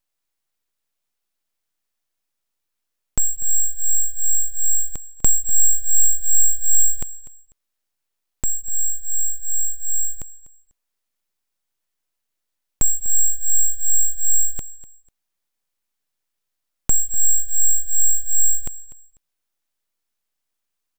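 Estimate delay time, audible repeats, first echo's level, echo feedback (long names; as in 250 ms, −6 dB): 247 ms, 2, −18.5 dB, 24%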